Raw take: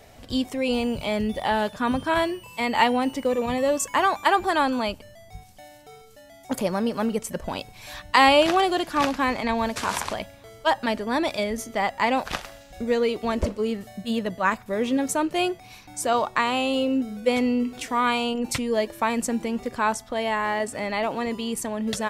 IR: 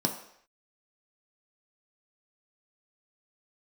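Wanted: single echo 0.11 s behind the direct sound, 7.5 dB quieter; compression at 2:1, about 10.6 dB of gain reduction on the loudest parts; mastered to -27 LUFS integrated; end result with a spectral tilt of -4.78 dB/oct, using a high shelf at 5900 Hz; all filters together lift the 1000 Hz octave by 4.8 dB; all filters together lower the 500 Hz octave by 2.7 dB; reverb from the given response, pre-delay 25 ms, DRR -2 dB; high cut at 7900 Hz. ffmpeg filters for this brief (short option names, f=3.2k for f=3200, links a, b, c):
-filter_complex "[0:a]lowpass=7.9k,equalizer=f=500:t=o:g=-6,equalizer=f=1k:t=o:g=7.5,highshelf=f=5.9k:g=6,acompressor=threshold=-28dB:ratio=2,aecho=1:1:110:0.422,asplit=2[a][b];[1:a]atrim=start_sample=2205,adelay=25[c];[b][c]afir=irnorm=-1:irlink=0,volume=-5.5dB[d];[a][d]amix=inputs=2:normalize=0,volume=-6dB"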